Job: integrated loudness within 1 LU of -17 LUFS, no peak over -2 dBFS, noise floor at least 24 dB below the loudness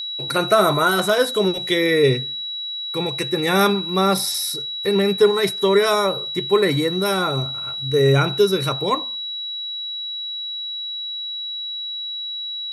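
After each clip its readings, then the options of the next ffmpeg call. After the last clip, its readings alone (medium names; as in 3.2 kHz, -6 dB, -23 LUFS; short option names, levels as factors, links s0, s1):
steady tone 3.9 kHz; tone level -26 dBFS; loudness -20.0 LUFS; peak level -3.0 dBFS; loudness target -17.0 LUFS
-> -af "bandreject=f=3900:w=30"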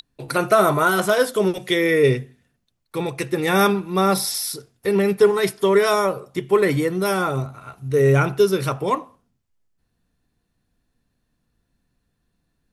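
steady tone not found; loudness -20.0 LUFS; peak level -3.0 dBFS; loudness target -17.0 LUFS
-> -af "volume=1.41,alimiter=limit=0.794:level=0:latency=1"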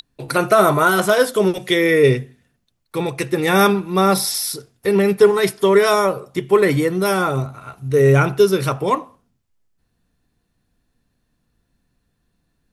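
loudness -17.0 LUFS; peak level -2.0 dBFS; noise floor -70 dBFS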